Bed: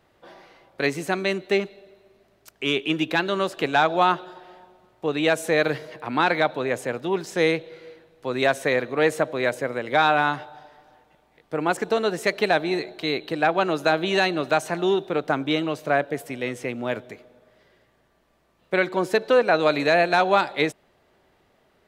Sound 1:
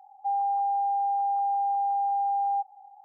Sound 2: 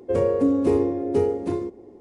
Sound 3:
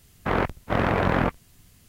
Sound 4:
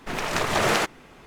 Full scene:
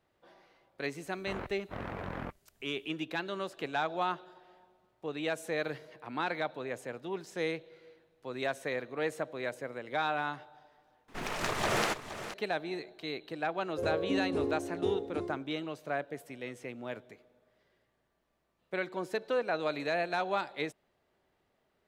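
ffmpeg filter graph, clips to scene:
ffmpeg -i bed.wav -i cue0.wav -i cue1.wav -i cue2.wav -i cue3.wav -filter_complex "[0:a]volume=-13dB[link_01];[4:a]aecho=1:1:469:0.251[link_02];[link_01]asplit=2[link_03][link_04];[link_03]atrim=end=11.084[link_05];[link_02]atrim=end=1.26,asetpts=PTS-STARTPTS,volume=-8dB[link_06];[link_04]atrim=start=12.336[link_07];[3:a]atrim=end=1.88,asetpts=PTS-STARTPTS,volume=-17.5dB,afade=type=in:duration=0.004:curve=hsin,afade=type=out:start_time=1.876:duration=0.004:curve=hsin,adelay=1010[link_08];[2:a]atrim=end=2,asetpts=PTS-STARTPTS,volume=-12.5dB,afade=type=in:duration=0.004:curve=hsin,afade=type=out:start_time=1.996:duration=0.004:curve=hsin,adelay=13680[link_09];[link_05][link_06]acrossfade=duration=0.004:curve1=hsin:curve2=hsin[link_10];[link_10][link_07]acrossfade=duration=0.004:curve1=hsin:curve2=hsin[link_11];[link_11][link_08][link_09]amix=inputs=3:normalize=0" out.wav

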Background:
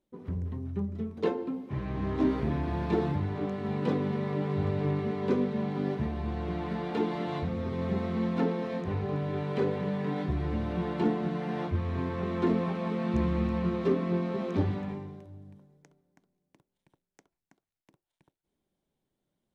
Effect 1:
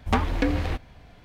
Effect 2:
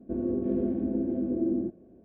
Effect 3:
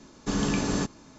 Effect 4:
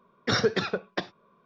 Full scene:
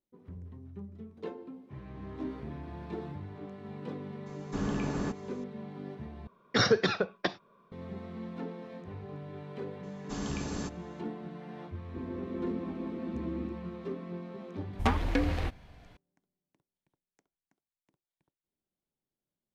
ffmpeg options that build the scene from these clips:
ffmpeg -i bed.wav -i cue0.wav -i cue1.wav -i cue2.wav -i cue3.wav -filter_complex "[3:a]asplit=2[link_01][link_02];[0:a]volume=-11.5dB[link_03];[link_01]acrossover=split=2500[link_04][link_05];[link_05]acompressor=threshold=-46dB:ratio=4:attack=1:release=60[link_06];[link_04][link_06]amix=inputs=2:normalize=0[link_07];[1:a]aresample=32000,aresample=44100[link_08];[link_03]asplit=2[link_09][link_10];[link_09]atrim=end=6.274[link_11];[4:a]atrim=end=1.45,asetpts=PTS-STARTPTS,volume=-0.5dB[link_12];[link_10]atrim=start=7.716[link_13];[link_07]atrim=end=1.18,asetpts=PTS-STARTPTS,volume=-6dB,afade=type=in:duration=0.004:curve=hsin,afade=type=out:start_time=1.176:duration=0.004:curve=hsin,adelay=4260[link_14];[link_02]atrim=end=1.18,asetpts=PTS-STARTPTS,volume=-10dB,afade=type=in:duration=0.004:curve=hsin,afade=type=out:start_time=1.176:duration=0.004:curve=hsin,adelay=9830[link_15];[2:a]atrim=end=2.04,asetpts=PTS-STARTPTS,volume=-10dB,afade=type=in:duration=0.004:curve=hsin,afade=type=out:start_time=2.036:duration=0.004:curve=hsin,adelay=11850[link_16];[link_08]atrim=end=1.24,asetpts=PTS-STARTPTS,volume=-4.5dB,afade=type=in:duration=0.004:curve=hsin,afade=type=out:start_time=1.236:duration=0.004:curve=hsin,adelay=14730[link_17];[link_11][link_12]acrossfade=duration=0.004:curve1=hsin:curve2=hsin[link_18];[link_18][link_13]acrossfade=duration=0.004:curve1=hsin:curve2=hsin[link_19];[link_19][link_14][link_15][link_16][link_17]amix=inputs=5:normalize=0" out.wav

